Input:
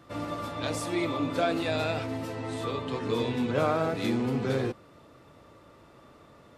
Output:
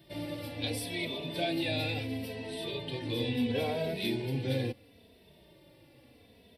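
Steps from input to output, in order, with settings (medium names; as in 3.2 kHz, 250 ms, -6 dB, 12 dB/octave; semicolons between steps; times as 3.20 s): treble shelf 3.2 kHz +11.5 dB; static phaser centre 3 kHz, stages 4; endless flanger 2.8 ms -0.73 Hz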